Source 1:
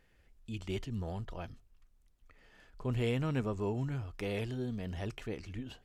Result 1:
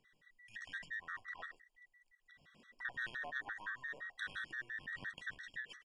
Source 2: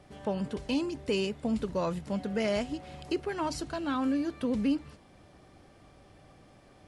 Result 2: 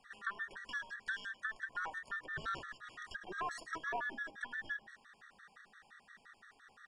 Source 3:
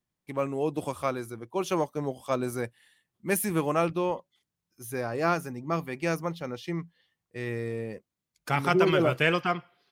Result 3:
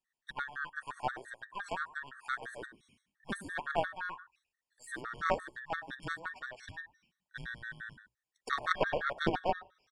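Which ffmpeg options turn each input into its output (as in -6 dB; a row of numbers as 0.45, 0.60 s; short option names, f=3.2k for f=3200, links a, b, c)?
-filter_complex "[0:a]afftfilt=real='real(if(between(b,1,1012),(2*floor((b-1)/92)+1)*92-b,b),0)':imag='imag(if(between(b,1,1012),(2*floor((b-1)/92)+1)*92-b,b),0)*if(between(b,1,1012),-1,1)':win_size=2048:overlap=0.75,acrossover=split=1000[a][b];[b]acompressor=threshold=-39dB:ratio=12[c];[a][c]amix=inputs=2:normalize=0,aresample=22050,aresample=44100,bandreject=f=60:t=h:w=6,bandreject=f=120:t=h:w=6,bandreject=f=180:t=h:w=6,bandreject=f=240:t=h:w=6,bandreject=f=300:t=h:w=6,bandreject=f=360:t=h:w=6,bandreject=f=420:t=h:w=6,asplit=2[d][e];[e]aecho=0:1:102:0.2[f];[d][f]amix=inputs=2:normalize=0,aeval=exprs='0.178*(cos(1*acos(clip(val(0)/0.178,-1,1)))-cos(1*PI/2))+0.0355*(cos(2*acos(clip(val(0)/0.178,-1,1)))-cos(2*PI/2))+0.0398*(cos(3*acos(clip(val(0)/0.178,-1,1)))-cos(3*PI/2))':c=same,afftfilt=real='re*gt(sin(2*PI*5.8*pts/sr)*(1-2*mod(floor(b*sr/1024/1100),2)),0)':imag='im*gt(sin(2*PI*5.8*pts/sr)*(1-2*mod(floor(b*sr/1024/1100),2)),0)':win_size=1024:overlap=0.75,volume=8dB"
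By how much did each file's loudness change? -7.0, -10.0, -8.5 LU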